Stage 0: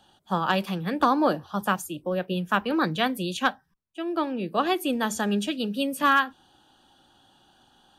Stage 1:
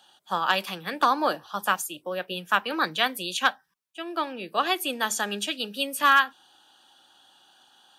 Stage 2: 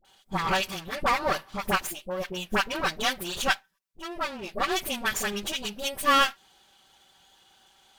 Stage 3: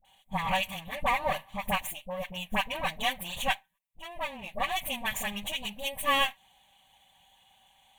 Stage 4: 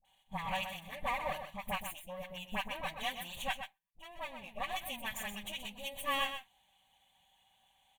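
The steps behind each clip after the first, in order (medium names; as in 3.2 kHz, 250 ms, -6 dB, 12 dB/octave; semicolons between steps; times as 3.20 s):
high-pass 1.3 kHz 6 dB/octave; trim +5 dB
comb filter that takes the minimum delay 5.2 ms; phase dispersion highs, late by 49 ms, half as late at 820 Hz
static phaser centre 1.4 kHz, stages 6
delay 126 ms -8.5 dB; trim -8.5 dB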